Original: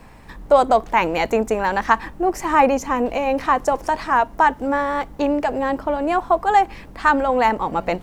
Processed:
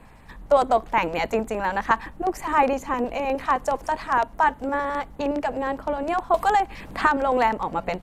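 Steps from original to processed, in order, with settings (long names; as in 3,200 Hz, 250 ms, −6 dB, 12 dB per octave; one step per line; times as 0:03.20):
auto-filter notch square 9.7 Hz 350–5,500 Hz
downsampling to 32,000 Hz
0:06.34–0:07.52: multiband upward and downward compressor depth 100%
level −4 dB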